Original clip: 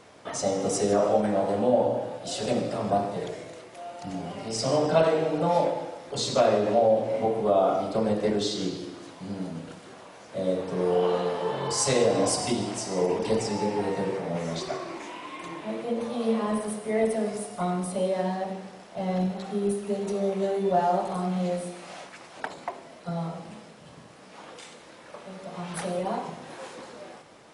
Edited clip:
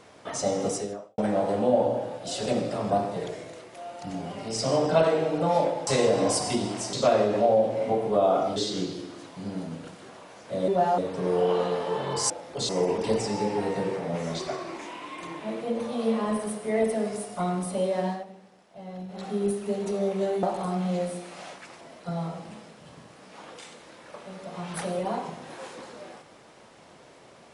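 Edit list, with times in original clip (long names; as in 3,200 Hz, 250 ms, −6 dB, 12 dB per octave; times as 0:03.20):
0:00.66–0:01.18: fade out quadratic
0:05.87–0:06.26: swap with 0:11.84–0:12.90
0:07.89–0:08.40: remove
0:18.31–0:19.44: duck −12 dB, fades 0.15 s
0:20.64–0:20.94: move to 0:10.52
0:22.32–0:22.81: remove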